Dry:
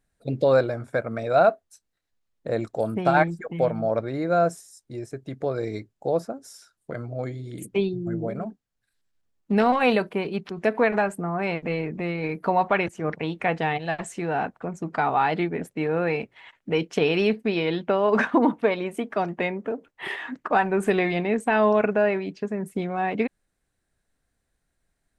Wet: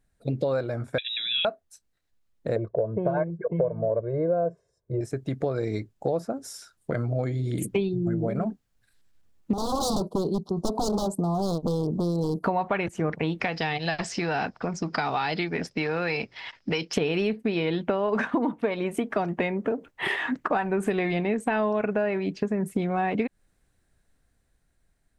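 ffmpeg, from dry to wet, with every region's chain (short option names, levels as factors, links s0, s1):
-filter_complex "[0:a]asettb=1/sr,asplit=3[s0][s1][s2];[s0]atrim=end=0.984[s3];[s1]atrim=start=0.98:end=1.45,asetpts=PTS-STARTPTS,afade=t=in:d=0.004:c=qsin,afade=t=out:st=0.466:d=0.004:c=qsin,equalizer=f=1600:t=o:w=0.28:g=7,acompressor=threshold=0.0447:ratio=2:attack=3.2:release=140:knee=1:detection=peak,lowpass=f=3400:t=q:w=0.5098,lowpass=f=3400:t=q:w=0.6013,lowpass=f=3400:t=q:w=0.9,lowpass=f=3400:t=q:w=2.563,afreqshift=-4000[s4];[s2]atrim=start=1.446[s5];[s3][s4]acrossfade=d=0.004:c1=hsin:c2=qsin[s6];[s6][s5]acrossfade=d=0.004:c1=qsin:c2=hsin,asettb=1/sr,asplit=3[s7][s8][s9];[s7]atrim=end=2.564[s10];[s8]atrim=start=2.56:end=5.01,asetpts=PTS-STARTPTS,afade=t=in:d=0.004:c=qsin,afade=t=out:st=2.446:d=0.004:c=qsin,bandpass=f=510:t=q:w=1,aemphasis=mode=reproduction:type=riaa,aecho=1:1:1.9:0.98,atrim=end_sample=108045[s11];[s9]atrim=start=5.006[s12];[s10][s11]acrossfade=d=0.004:c1=hsin:c2=qsin[s13];[s13][s12]acrossfade=d=0.004:c1=qsin:c2=hsin,asettb=1/sr,asplit=3[s14][s15][s16];[s14]atrim=end=9.534[s17];[s15]atrim=start=9.53:end=12.44,asetpts=PTS-STARTPTS,afade=t=in:d=0.004:c=qsin,afade=t=out:st=2.906:d=0.004:c=qsin,agate=range=0.501:threshold=0.01:ratio=16:release=100:detection=peak,aeval=exprs='0.075*(abs(mod(val(0)/0.075+3,4)-2)-1)':c=same,asuperstop=centerf=2100:order=8:qfactor=0.71[s18];[s16]atrim=start=12.436[s19];[s17][s18]acrossfade=d=0.004:c1=hsin:c2=qsin[s20];[s20][s19]acrossfade=d=0.004:c1=qsin:c2=hsin,asettb=1/sr,asplit=3[s21][s22][s23];[s21]atrim=end=13.404[s24];[s22]atrim=start=13.4:end=16.93,asetpts=PTS-STARTPTS,afade=t=in:d=0.004:c=qsin,afade=t=out:st=3.526:d=0.004:c=qsin,lowpass=f=5100:t=q:w=11,acrossover=split=770|1700|3600[s25][s26][s27][s28];[s25]acompressor=threshold=0.0158:ratio=3[s29];[s26]acompressor=threshold=0.0126:ratio=3[s30];[s27]acompressor=threshold=0.0178:ratio=3[s31];[s28]acompressor=threshold=0.00708:ratio=3[s32];[s29][s30][s31][s32]amix=inputs=4:normalize=0[s33];[s23]atrim=start=16.926[s34];[s24][s33]acrossfade=d=0.004:c1=hsin:c2=qsin[s35];[s35][s34]acrossfade=d=0.004:c1=qsin:c2=hsin,dynaudnorm=f=740:g=7:m=2.66,lowshelf=f=190:g=5.5,acompressor=threshold=0.0708:ratio=6"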